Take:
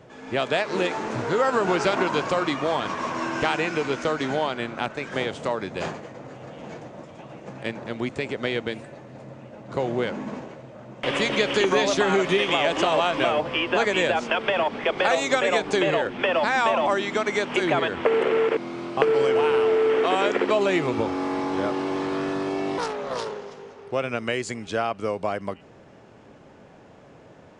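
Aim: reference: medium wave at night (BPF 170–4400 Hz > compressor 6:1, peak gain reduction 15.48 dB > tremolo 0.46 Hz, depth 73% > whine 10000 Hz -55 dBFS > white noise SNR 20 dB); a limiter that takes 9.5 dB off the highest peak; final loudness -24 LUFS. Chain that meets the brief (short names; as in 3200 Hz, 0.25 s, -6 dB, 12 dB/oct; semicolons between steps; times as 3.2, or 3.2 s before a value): limiter -13 dBFS; BPF 170–4400 Hz; compressor 6:1, threshold -35 dBFS; tremolo 0.46 Hz, depth 73%; whine 10000 Hz -55 dBFS; white noise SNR 20 dB; gain +17.5 dB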